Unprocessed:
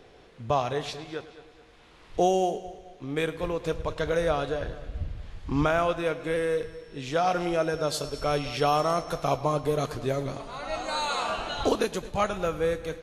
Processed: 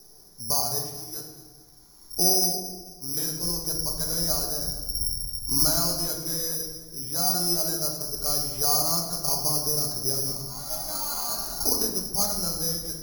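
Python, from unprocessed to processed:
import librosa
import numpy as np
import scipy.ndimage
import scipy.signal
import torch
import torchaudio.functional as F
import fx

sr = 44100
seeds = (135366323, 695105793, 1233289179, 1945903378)

y = scipy.signal.sosfilt(scipy.signal.butter(2, 1000.0, 'lowpass', fs=sr, output='sos'), x)
y = fx.peak_eq(y, sr, hz=530.0, db=-10.5, octaves=0.49)
y = (np.kron(scipy.signal.resample_poly(y, 1, 8), np.eye(8)[0]) * 8)[:len(y)]
y = fx.room_shoebox(y, sr, seeds[0], volume_m3=490.0, walls='mixed', distance_m=1.2)
y = y * 10.0 ** (-6.0 / 20.0)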